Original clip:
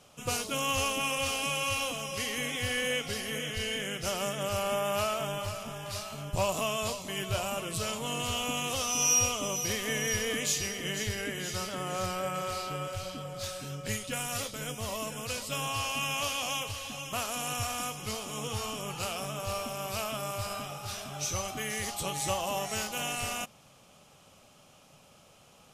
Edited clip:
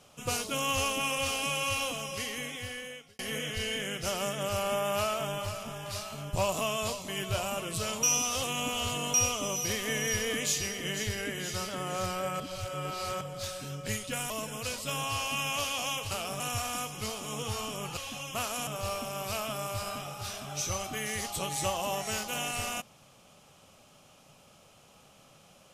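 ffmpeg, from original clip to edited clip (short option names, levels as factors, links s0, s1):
-filter_complex "[0:a]asplit=11[s0][s1][s2][s3][s4][s5][s6][s7][s8][s9][s10];[s0]atrim=end=3.19,asetpts=PTS-STARTPTS,afade=t=out:st=1.98:d=1.21[s11];[s1]atrim=start=3.19:end=8.032,asetpts=PTS-STARTPTS,afade=t=in:d=0.004:c=hsin[s12];[s2]atrim=start=8.028:end=9.142,asetpts=PTS-STARTPTS,areverse[s13];[s3]atrim=start=9.138:end=12.402[s14];[s4]atrim=start=12.398:end=13.212,asetpts=PTS-STARTPTS,areverse[s15];[s5]atrim=start=13.208:end=14.302[s16];[s6]atrim=start=14.938:end=16.752[s17];[s7]atrim=start=19.018:end=19.312[s18];[s8]atrim=start=17.448:end=19.022[s19];[s9]atrim=start=16.748:end=17.452[s20];[s10]atrim=start=19.308[s21];[s11][s12]concat=n=2:v=0:a=1[s22];[s22][s13]acrossfade=d=0.004:c1=hsin:c2=hsin[s23];[s23][s14]acrossfade=d=0.004:c1=hsin:c2=hsin[s24];[s24][s15]acrossfade=d=0.004:c1=hsin:c2=hsin[s25];[s25][s16]acrossfade=d=0.004:c1=hsin:c2=hsin[s26];[s26][s17]acrossfade=d=0.004:c1=hsin:c2=hsin[s27];[s27][s18]acrossfade=d=0.004:c1=hsin:c2=hsin[s28];[s28][s19]acrossfade=d=0.004:c1=hsin:c2=hsin[s29];[s29][s20]acrossfade=d=0.004:c1=hsin:c2=hsin[s30];[s30][s21]acrossfade=d=0.004:c1=hsin:c2=hsin"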